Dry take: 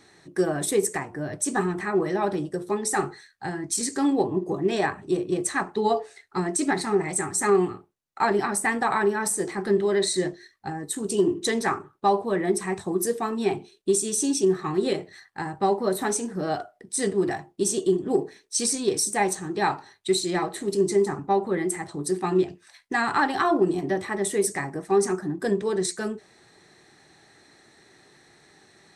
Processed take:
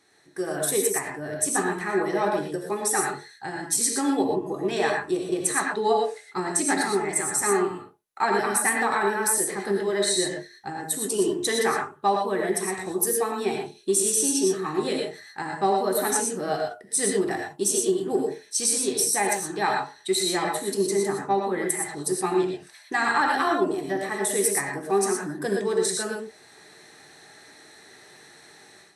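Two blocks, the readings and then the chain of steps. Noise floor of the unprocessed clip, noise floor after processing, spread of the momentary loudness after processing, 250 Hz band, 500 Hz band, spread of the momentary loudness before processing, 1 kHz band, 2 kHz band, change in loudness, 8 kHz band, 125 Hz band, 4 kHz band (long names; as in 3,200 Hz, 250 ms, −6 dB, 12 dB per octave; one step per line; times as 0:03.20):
−59 dBFS, −52 dBFS, 8 LU, −2.5 dB, −1.0 dB, 8 LU, +1.0 dB, +2.5 dB, +1.0 dB, +4.5 dB, −5.0 dB, +2.5 dB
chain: parametric band 11,000 Hz +10.5 dB 0.32 octaves
reverb whose tail is shaped and stops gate 140 ms rising, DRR 1 dB
automatic gain control
low-shelf EQ 260 Hz −9.5 dB
level −7.5 dB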